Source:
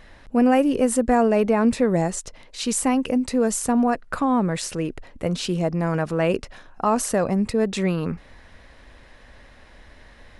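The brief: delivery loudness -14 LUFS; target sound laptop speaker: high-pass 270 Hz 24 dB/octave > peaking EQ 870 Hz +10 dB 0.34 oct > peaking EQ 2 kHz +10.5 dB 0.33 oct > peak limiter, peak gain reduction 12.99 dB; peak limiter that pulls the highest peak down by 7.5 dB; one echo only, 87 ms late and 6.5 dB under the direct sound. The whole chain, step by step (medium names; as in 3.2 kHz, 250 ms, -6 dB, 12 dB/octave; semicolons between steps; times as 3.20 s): peak limiter -13.5 dBFS; high-pass 270 Hz 24 dB/octave; peaking EQ 870 Hz +10 dB 0.34 oct; peaking EQ 2 kHz +10.5 dB 0.33 oct; delay 87 ms -6.5 dB; trim +15 dB; peak limiter -4.5 dBFS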